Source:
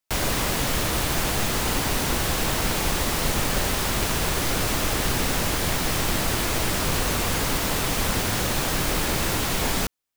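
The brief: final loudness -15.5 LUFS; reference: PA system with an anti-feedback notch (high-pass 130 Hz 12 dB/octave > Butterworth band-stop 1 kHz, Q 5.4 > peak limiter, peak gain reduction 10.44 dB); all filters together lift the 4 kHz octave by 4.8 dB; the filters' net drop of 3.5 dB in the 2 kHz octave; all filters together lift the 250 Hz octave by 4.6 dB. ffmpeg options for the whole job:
-af "highpass=130,asuperstop=centerf=1000:order=8:qfactor=5.4,equalizer=f=250:t=o:g=6.5,equalizer=f=2000:t=o:g=-7,equalizer=f=4000:t=o:g=8,volume=4.73,alimiter=limit=0.398:level=0:latency=1"

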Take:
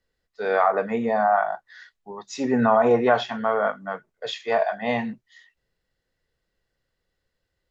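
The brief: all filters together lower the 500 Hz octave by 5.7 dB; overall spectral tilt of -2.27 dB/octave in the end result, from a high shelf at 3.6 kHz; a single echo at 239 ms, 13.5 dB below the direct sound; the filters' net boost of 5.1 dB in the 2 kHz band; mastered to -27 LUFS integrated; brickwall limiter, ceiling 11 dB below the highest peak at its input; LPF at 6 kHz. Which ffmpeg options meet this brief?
-af "lowpass=6000,equalizer=f=500:t=o:g=-8.5,equalizer=f=2000:t=o:g=6,highshelf=f=3600:g=7.5,alimiter=limit=0.15:level=0:latency=1,aecho=1:1:239:0.211,volume=1.12"

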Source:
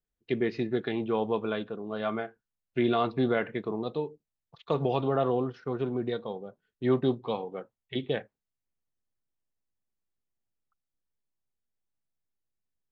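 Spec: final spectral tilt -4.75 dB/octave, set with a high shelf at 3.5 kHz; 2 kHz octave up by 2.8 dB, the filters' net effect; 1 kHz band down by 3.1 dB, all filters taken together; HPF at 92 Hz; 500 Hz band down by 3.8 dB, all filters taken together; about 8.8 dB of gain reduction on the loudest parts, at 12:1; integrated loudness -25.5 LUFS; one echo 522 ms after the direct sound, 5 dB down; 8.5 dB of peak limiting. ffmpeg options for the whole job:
-af "highpass=92,equalizer=f=500:t=o:g=-4.5,equalizer=f=1000:t=o:g=-4,equalizer=f=2000:t=o:g=4,highshelf=f=3500:g=4.5,acompressor=threshold=0.0282:ratio=12,alimiter=level_in=1.41:limit=0.0631:level=0:latency=1,volume=0.708,aecho=1:1:522:0.562,volume=4.47"

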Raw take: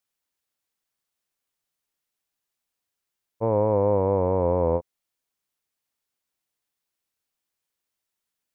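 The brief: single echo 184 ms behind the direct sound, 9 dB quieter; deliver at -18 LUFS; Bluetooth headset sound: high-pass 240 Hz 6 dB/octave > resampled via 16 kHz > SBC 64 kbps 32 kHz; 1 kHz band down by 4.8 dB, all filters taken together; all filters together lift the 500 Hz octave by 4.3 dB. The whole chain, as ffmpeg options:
-af "highpass=f=240:p=1,equalizer=f=500:t=o:g=7.5,equalizer=f=1000:t=o:g=-8.5,aecho=1:1:184:0.355,aresample=16000,aresample=44100,volume=1.26" -ar 32000 -c:a sbc -b:a 64k

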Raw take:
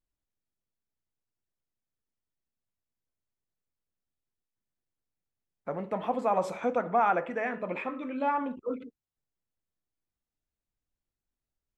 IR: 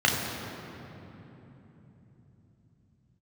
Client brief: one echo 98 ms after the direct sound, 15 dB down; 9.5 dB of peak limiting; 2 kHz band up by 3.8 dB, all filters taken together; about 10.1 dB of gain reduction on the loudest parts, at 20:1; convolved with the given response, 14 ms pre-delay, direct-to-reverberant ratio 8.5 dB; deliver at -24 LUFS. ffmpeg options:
-filter_complex "[0:a]equalizer=f=2000:t=o:g=5,acompressor=threshold=0.0355:ratio=20,alimiter=level_in=2:limit=0.0631:level=0:latency=1,volume=0.501,aecho=1:1:98:0.178,asplit=2[s0][s1];[1:a]atrim=start_sample=2205,adelay=14[s2];[s1][s2]afir=irnorm=-1:irlink=0,volume=0.0562[s3];[s0][s3]amix=inputs=2:normalize=0,volume=5.62"

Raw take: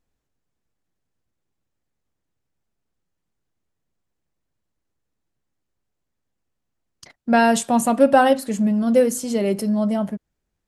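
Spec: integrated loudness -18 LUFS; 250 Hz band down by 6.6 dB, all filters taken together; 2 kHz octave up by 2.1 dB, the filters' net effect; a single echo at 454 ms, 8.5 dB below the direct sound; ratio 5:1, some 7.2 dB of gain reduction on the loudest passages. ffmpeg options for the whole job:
-af "equalizer=f=250:t=o:g=-7.5,equalizer=f=2000:t=o:g=3,acompressor=threshold=0.126:ratio=5,aecho=1:1:454:0.376,volume=2"

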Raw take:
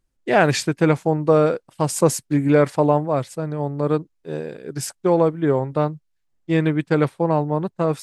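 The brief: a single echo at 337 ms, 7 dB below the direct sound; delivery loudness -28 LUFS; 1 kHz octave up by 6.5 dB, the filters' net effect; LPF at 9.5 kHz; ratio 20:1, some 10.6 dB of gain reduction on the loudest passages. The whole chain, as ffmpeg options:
-af "lowpass=9500,equalizer=f=1000:t=o:g=8.5,acompressor=threshold=0.126:ratio=20,aecho=1:1:337:0.447,volume=0.708"

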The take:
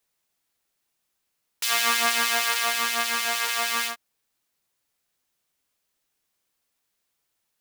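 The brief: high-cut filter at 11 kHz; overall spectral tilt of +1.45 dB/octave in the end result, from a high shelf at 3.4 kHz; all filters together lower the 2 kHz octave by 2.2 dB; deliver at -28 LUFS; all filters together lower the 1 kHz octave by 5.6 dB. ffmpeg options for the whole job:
-af "lowpass=11000,equalizer=f=1000:t=o:g=-7.5,equalizer=f=2000:t=o:g=-3,highshelf=f=3400:g=7,volume=0.473"

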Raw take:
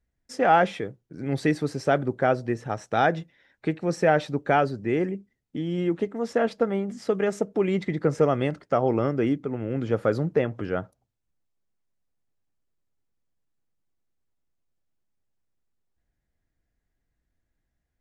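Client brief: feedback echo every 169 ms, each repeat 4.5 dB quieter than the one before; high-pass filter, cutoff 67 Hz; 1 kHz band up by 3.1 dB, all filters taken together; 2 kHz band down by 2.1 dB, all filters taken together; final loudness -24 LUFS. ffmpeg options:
-af "highpass=67,equalizer=f=1000:t=o:g=6,equalizer=f=2000:t=o:g=-6,aecho=1:1:169|338|507|676|845|1014|1183|1352|1521:0.596|0.357|0.214|0.129|0.0772|0.0463|0.0278|0.0167|0.01,volume=0.891"

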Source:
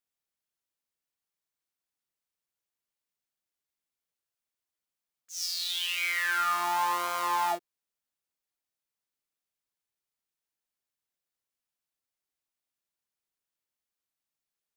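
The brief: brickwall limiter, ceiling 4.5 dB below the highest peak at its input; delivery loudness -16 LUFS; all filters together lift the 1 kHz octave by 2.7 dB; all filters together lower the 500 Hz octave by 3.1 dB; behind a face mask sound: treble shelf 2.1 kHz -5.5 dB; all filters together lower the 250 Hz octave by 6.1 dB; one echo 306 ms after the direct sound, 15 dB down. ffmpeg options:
-af "equalizer=f=250:t=o:g=-6,equalizer=f=500:t=o:g=-7.5,equalizer=f=1000:t=o:g=6.5,alimiter=limit=0.106:level=0:latency=1,highshelf=f=2100:g=-5.5,aecho=1:1:306:0.178,volume=4.73"

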